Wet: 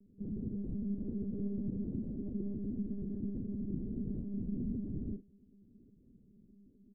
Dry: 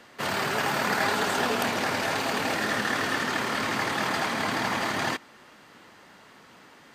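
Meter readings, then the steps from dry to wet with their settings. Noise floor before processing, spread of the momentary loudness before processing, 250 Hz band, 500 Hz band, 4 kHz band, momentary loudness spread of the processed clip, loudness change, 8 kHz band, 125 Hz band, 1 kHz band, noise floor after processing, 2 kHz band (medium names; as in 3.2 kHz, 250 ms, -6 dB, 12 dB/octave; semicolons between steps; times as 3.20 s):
-53 dBFS, 3 LU, -2.5 dB, -17.5 dB, under -40 dB, 3 LU, -13.0 dB, under -40 dB, -1.5 dB, under -40 dB, -64 dBFS, under -40 dB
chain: inverse Chebyshev low-pass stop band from 900 Hz, stop band 60 dB; doubling 40 ms -9 dB; monotone LPC vocoder at 8 kHz 200 Hz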